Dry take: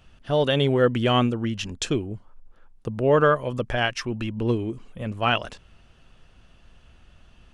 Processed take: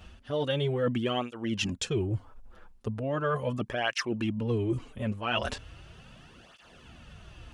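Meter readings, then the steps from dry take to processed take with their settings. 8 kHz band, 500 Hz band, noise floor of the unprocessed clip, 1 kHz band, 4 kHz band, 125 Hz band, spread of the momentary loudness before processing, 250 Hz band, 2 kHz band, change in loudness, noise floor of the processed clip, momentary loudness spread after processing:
−3.0 dB, −8.0 dB, −55 dBFS, −9.0 dB, −6.0 dB, −5.5 dB, 15 LU, −5.5 dB, −6.5 dB, −7.0 dB, −56 dBFS, 15 LU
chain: reversed playback
downward compressor 5 to 1, threshold −34 dBFS, peak gain reduction 18 dB
reversed playback
through-zero flanger with one copy inverted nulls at 0.38 Hz, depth 7.5 ms
level +9 dB

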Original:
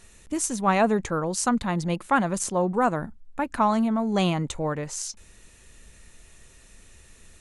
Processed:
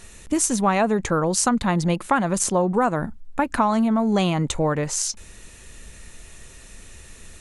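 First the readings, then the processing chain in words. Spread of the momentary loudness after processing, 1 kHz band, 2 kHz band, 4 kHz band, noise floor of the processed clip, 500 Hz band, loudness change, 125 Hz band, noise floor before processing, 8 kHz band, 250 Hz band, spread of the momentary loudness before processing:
7 LU, +2.0 dB, +2.5 dB, +4.5 dB, −45 dBFS, +3.5 dB, +3.5 dB, +4.5 dB, −53 dBFS, +6.5 dB, +3.5 dB, 11 LU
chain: downward compressor 4 to 1, threshold −25 dBFS, peak gain reduction 8.5 dB
level +8 dB

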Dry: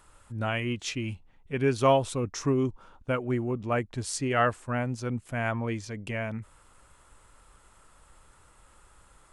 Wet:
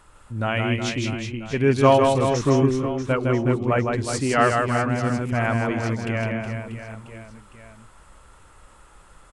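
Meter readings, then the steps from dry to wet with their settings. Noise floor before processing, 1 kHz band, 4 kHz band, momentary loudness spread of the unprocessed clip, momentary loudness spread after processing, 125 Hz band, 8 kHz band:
−59 dBFS, +7.5 dB, +6.0 dB, 12 LU, 14 LU, +8.0 dB, +4.0 dB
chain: high-shelf EQ 5,800 Hz −6 dB
reverse bouncing-ball delay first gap 160 ms, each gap 1.3×, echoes 5
level +5.5 dB

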